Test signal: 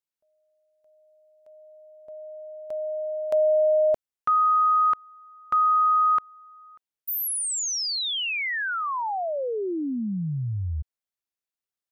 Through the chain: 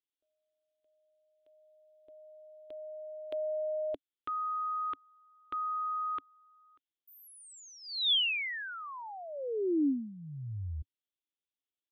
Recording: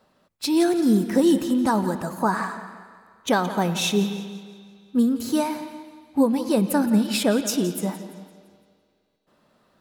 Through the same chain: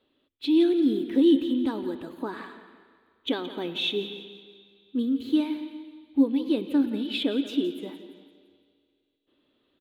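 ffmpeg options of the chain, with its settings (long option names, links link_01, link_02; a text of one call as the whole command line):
ffmpeg -i in.wav -filter_complex "[0:a]firequalizer=gain_entry='entry(100,0);entry(190,-11);entry(280,11);entry(660,-7);entry(1400,-5);entry(3400,12);entry(5300,-16);entry(8200,-15);entry(14000,-8)':delay=0.05:min_phase=1,acrossover=split=8400[link_01][link_02];[link_02]acompressor=threshold=-50dB:ratio=4:attack=1:release=60[link_03];[link_01][link_03]amix=inputs=2:normalize=0,volume=-9dB" out.wav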